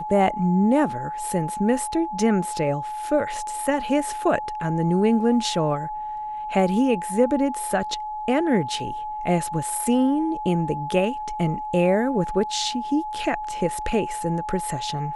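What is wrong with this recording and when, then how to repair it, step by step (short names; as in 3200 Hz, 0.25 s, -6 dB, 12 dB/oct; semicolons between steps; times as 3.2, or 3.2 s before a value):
tone 850 Hz -28 dBFS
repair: notch 850 Hz, Q 30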